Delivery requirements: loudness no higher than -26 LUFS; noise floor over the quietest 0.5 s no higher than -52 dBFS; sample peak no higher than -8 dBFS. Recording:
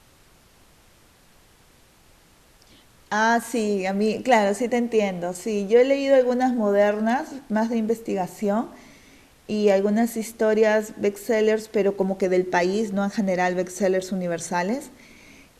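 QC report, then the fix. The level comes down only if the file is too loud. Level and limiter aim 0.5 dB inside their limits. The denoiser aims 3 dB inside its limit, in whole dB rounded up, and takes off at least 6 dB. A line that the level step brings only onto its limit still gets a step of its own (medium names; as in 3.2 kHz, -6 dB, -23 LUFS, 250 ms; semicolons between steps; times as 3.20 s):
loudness -22.5 LUFS: fail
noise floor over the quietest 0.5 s -55 dBFS: pass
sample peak -6.0 dBFS: fail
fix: trim -4 dB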